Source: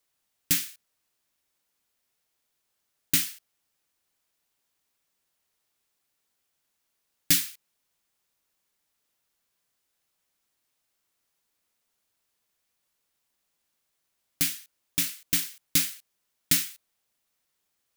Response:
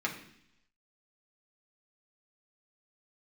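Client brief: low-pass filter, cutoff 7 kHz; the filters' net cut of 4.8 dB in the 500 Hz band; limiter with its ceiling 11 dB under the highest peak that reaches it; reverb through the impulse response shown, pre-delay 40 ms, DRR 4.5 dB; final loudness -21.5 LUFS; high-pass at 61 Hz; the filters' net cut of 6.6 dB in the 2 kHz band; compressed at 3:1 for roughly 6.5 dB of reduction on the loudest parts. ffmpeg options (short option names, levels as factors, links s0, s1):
-filter_complex "[0:a]highpass=61,lowpass=7000,equalizer=f=500:t=o:g=-7.5,equalizer=f=2000:t=o:g=-8,acompressor=threshold=0.0224:ratio=3,alimiter=limit=0.0668:level=0:latency=1,asplit=2[s0][s1];[1:a]atrim=start_sample=2205,adelay=40[s2];[s1][s2]afir=irnorm=-1:irlink=0,volume=0.299[s3];[s0][s3]amix=inputs=2:normalize=0,volume=10"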